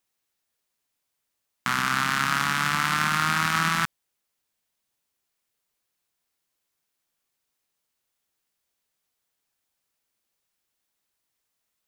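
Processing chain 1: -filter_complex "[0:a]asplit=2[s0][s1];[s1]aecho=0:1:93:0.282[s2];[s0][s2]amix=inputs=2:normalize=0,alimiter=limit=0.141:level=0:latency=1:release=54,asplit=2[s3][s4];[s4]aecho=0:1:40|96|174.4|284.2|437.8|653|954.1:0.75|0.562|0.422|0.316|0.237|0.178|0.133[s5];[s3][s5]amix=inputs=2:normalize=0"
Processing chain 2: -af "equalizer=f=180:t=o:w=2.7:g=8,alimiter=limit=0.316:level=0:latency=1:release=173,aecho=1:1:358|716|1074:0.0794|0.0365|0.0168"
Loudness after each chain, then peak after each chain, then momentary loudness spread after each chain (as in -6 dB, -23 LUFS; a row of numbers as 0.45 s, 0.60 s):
-28.0 LUFS, -25.0 LUFS; -12.5 dBFS, -9.5 dBFS; 15 LU, 5 LU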